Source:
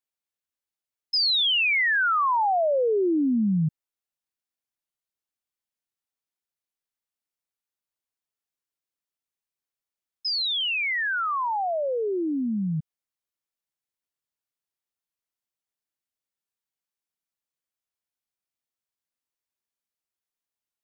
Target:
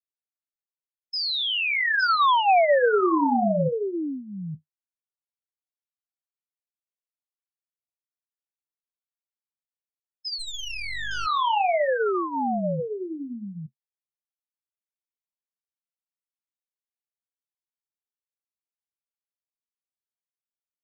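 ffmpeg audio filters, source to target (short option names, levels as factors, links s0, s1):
-filter_complex "[0:a]equalizer=f=740:w=0.5:g=10,asplit=2[s0][s1];[s1]aecho=0:1:861:0.501[s2];[s0][s2]amix=inputs=2:normalize=0,flanger=delay=9.4:depth=9.8:regen=-45:speed=0.5:shape=sinusoidal,asplit=3[s3][s4][s5];[s3]afade=t=out:st=10.38:d=0.02[s6];[s4]aeval=exprs='max(val(0),0)':c=same,afade=t=in:st=10.38:d=0.02,afade=t=out:st=11.25:d=0.02[s7];[s5]afade=t=in:st=11.25:d=0.02[s8];[s6][s7][s8]amix=inputs=3:normalize=0,afftdn=nr=19:nf=-42,volume=0.794"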